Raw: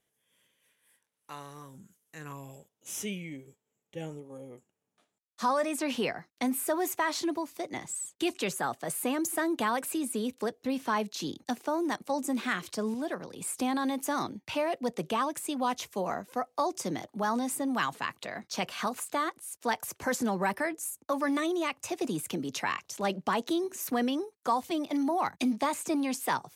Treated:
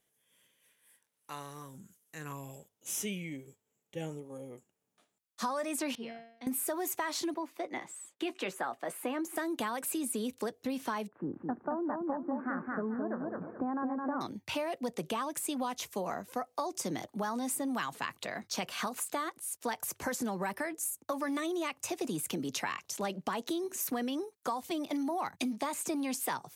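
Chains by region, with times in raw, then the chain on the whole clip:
5.95–6.47 s: Savitzky-Golay filter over 15 samples + feedback comb 230 Hz, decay 0.66 s, mix 90%
7.34–9.36 s: three-band isolator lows -18 dB, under 230 Hz, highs -14 dB, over 3.2 kHz + band-stop 430 Hz, Q 11 + doubling 16 ms -12.5 dB
11.08–14.21 s: steep low-pass 1.6 kHz 48 dB/octave + feedback delay 215 ms, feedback 29%, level -4.5 dB
whole clip: treble shelf 7.8 kHz +5 dB; hum notches 50/100 Hz; compression, threshold -31 dBFS

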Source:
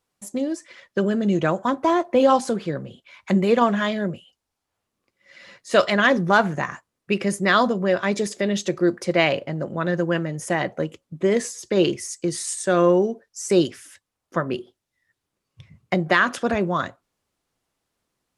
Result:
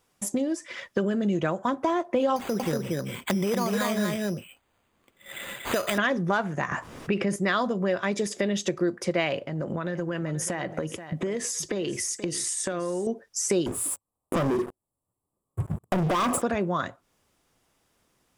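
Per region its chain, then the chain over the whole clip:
2.36–5.98 s: compression, threshold -19 dBFS + careless resampling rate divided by 8×, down none, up hold + delay 236 ms -3.5 dB
6.71–7.36 s: low-pass 2.6 kHz 6 dB/octave + level flattener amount 50%
9.40–13.07 s: compression 4:1, threshold -31 dBFS + delay 480 ms -15.5 dB
13.66–16.42 s: Chebyshev band-stop 1.2–7.5 kHz, order 5 + compression 2.5:1, threshold -32 dBFS + waveshaping leveller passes 5
whole clip: band-stop 4.2 kHz, Q 13; compression 3:1, threshold -36 dBFS; trim +8.5 dB

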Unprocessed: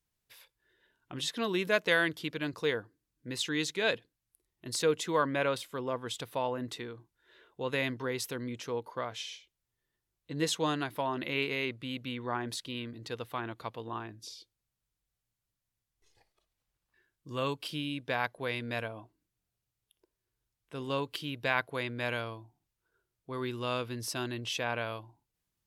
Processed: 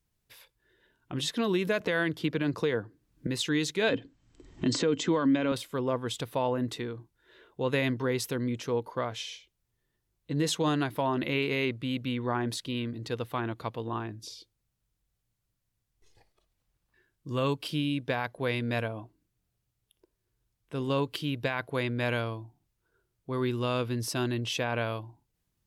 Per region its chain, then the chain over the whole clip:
1.80–3.27 s: treble shelf 4.3 kHz -6.5 dB + three bands compressed up and down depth 70%
3.89–5.52 s: brick-wall FIR low-pass 8.2 kHz + small resonant body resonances 270/3100 Hz, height 13 dB, ringing for 95 ms + three bands compressed up and down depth 100%
whole clip: bass shelf 450 Hz +7 dB; peak limiter -20 dBFS; trim +2 dB

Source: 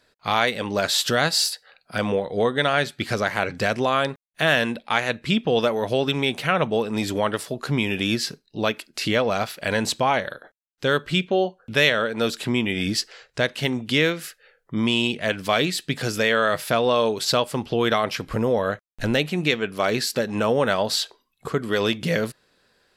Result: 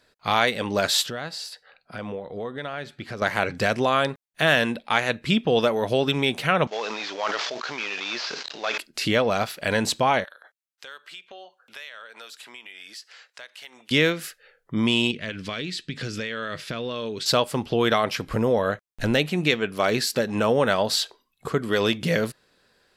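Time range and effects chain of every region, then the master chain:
1.06–3.22 s: low-pass 2.8 kHz 6 dB/octave + compression 2:1, threshold -37 dBFS
6.67–8.78 s: CVSD coder 32 kbps + high-pass 770 Hz + decay stretcher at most 27 dB/s
10.24–13.91 s: high-pass 950 Hz + compression 3:1, threshold -43 dBFS
15.11–17.26 s: low-pass 5.2 kHz + peaking EQ 790 Hz -12 dB 1.1 oct + compression, threshold -26 dBFS
whole clip: none

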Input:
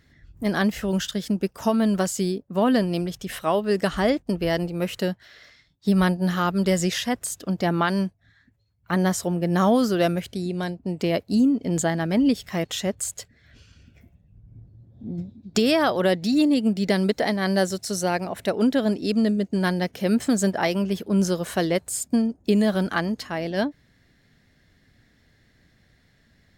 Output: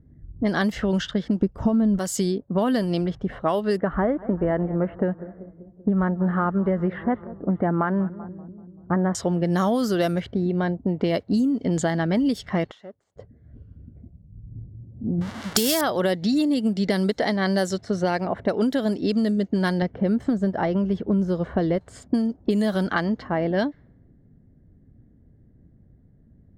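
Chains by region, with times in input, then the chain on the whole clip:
1.42–1.99 s: tilt EQ -4.5 dB/octave + tape noise reduction on one side only decoder only
3.77–9.15 s: low-pass 1.6 kHz 24 dB/octave + modulated delay 193 ms, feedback 67%, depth 137 cents, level -22 dB
12.71–13.16 s: self-modulated delay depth 0.072 ms + band-pass filter 6.3 kHz, Q 0.59 + compression 4:1, threshold -36 dBFS
15.21–15.81 s: zero-crossing glitches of -16 dBFS + treble shelf 4.1 kHz +9 dB
19.82–21.81 s: de-esser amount 75% + low-pass 1.2 kHz 6 dB/octave + bass shelf 100 Hz +10 dB
whole clip: band-stop 2.5 kHz, Q 7.2; level-controlled noise filter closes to 330 Hz, open at -17 dBFS; compression 5:1, threshold -28 dBFS; trim +8 dB

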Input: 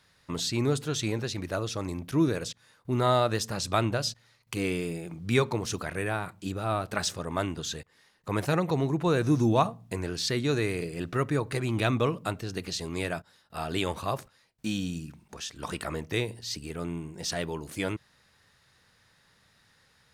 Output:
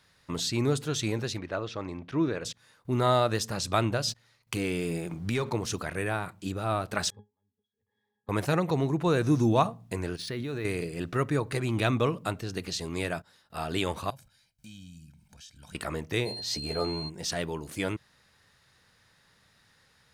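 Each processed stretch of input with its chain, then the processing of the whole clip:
1.38–2.45 s: low-pass 3.2 kHz + bass shelf 230 Hz -7 dB
4.08–5.50 s: waveshaping leveller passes 1 + compression 4:1, threshold -26 dBFS
7.10–8.29 s: inverted gate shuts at -25 dBFS, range -38 dB + high-pass 120 Hz + pitch-class resonator G#, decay 0.16 s
10.16–10.65 s: level held to a coarse grid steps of 11 dB + distance through air 68 m + decimation joined by straight lines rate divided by 3×
14.10–15.75 s: peaking EQ 730 Hz -11 dB 2.7 oct + comb 1.3 ms, depth 71% + compression 2:1, threshold -56 dBFS
16.25–17.08 s: peaking EQ 670 Hz +11.5 dB 1.1 oct + whistle 4.2 kHz -38 dBFS + doubling 14 ms -4.5 dB
whole clip: none

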